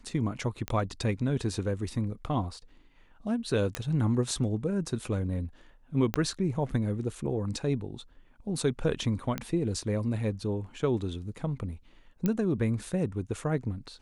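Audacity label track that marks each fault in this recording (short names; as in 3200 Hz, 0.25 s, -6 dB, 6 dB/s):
0.680000	0.680000	pop -17 dBFS
3.750000	3.750000	pop -15 dBFS
6.140000	6.140000	pop -13 dBFS
9.380000	9.380000	pop -16 dBFS
12.260000	12.260000	pop -15 dBFS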